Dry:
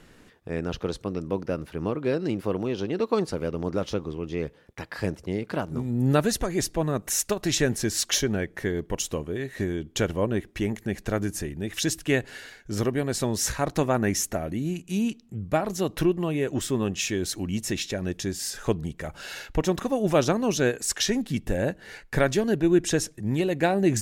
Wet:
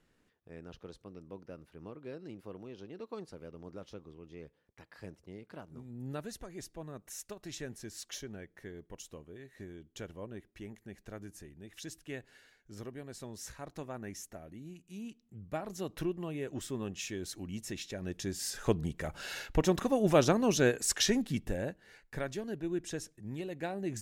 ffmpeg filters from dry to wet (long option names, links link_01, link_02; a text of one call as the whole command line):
ffmpeg -i in.wav -af "volume=-3.5dB,afade=type=in:start_time=14.95:duration=0.86:silence=0.446684,afade=type=in:start_time=17.88:duration=0.93:silence=0.375837,afade=type=out:start_time=21.1:duration=0.71:silence=0.266073" out.wav